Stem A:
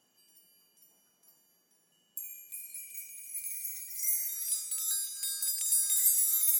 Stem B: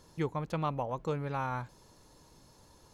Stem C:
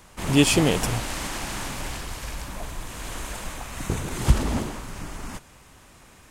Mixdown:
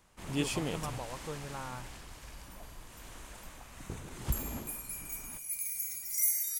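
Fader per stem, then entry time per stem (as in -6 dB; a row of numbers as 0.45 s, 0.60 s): +1.5 dB, -8.0 dB, -15.0 dB; 2.15 s, 0.20 s, 0.00 s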